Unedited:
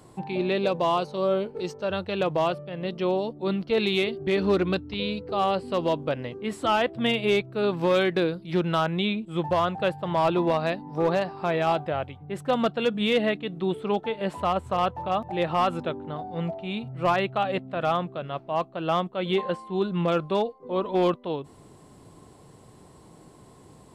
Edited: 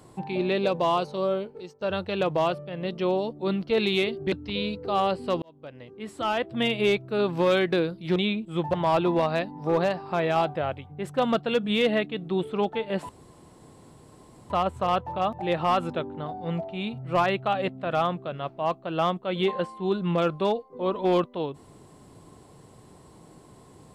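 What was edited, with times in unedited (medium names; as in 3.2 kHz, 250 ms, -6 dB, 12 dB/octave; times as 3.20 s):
1.14–1.81 s: fade out, to -19.5 dB
4.32–4.76 s: delete
5.86–7.23 s: fade in
8.60–8.96 s: delete
9.54–10.05 s: delete
14.40 s: insert room tone 1.41 s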